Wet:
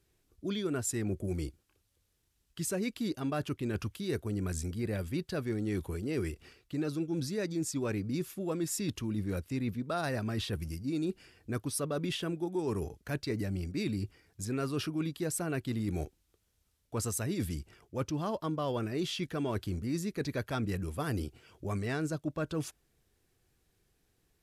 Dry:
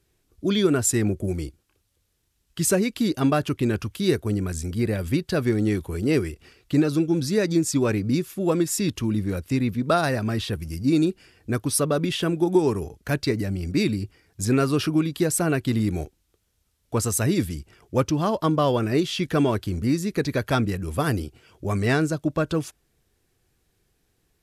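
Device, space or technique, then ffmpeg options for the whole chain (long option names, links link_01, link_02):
compression on the reversed sound: -af "areverse,acompressor=threshold=-26dB:ratio=6,areverse,volume=-4.5dB"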